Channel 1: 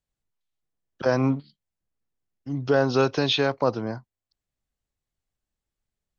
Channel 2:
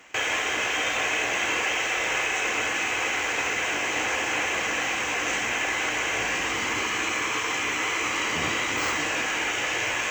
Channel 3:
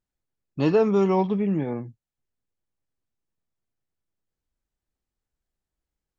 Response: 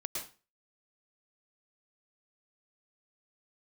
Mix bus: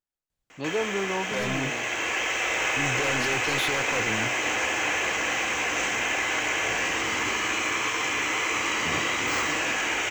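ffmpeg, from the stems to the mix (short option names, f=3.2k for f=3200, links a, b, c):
-filter_complex "[0:a]asoftclip=type=hard:threshold=-31dB,adelay=300,volume=1.5dB[a];[1:a]adelay=500,volume=-3dB,asplit=2[b][c];[c]volume=-6dB[d];[2:a]lowshelf=f=300:g=-11.5,volume=-5dB,asplit=2[e][f];[f]apad=whole_len=467813[g];[b][g]sidechaincompress=threshold=-38dB:ratio=8:attack=16:release=1250[h];[3:a]atrim=start_sample=2205[i];[d][i]afir=irnorm=-1:irlink=0[j];[a][h][e][j]amix=inputs=4:normalize=0"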